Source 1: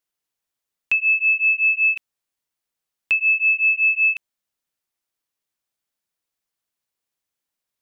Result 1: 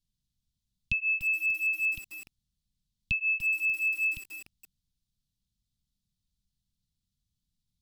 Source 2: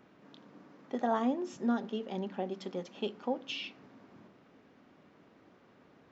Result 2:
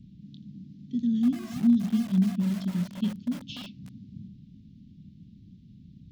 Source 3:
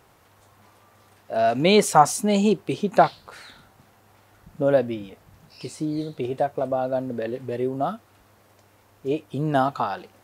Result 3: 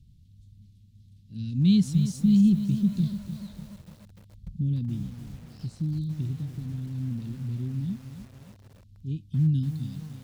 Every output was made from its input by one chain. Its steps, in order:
Chebyshev band-stop 200–3700 Hz, order 3; RIAA curve playback; lo-fi delay 0.293 s, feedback 55%, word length 7-bit, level -11 dB; match loudness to -27 LUFS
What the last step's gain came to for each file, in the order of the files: +7.5, +9.0, -3.5 dB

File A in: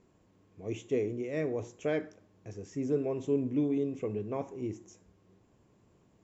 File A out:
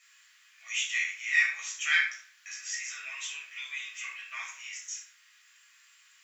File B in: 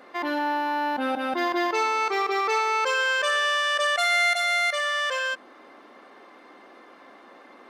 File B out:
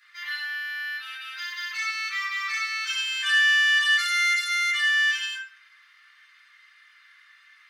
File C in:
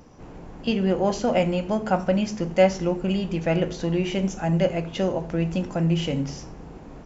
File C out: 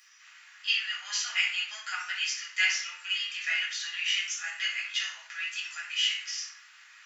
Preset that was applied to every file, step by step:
steep high-pass 1600 Hz 36 dB/oct; shoebox room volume 480 m³, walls furnished, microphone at 6.3 m; normalise peaks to -12 dBFS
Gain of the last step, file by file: +12.5, -6.0, -1.0 dB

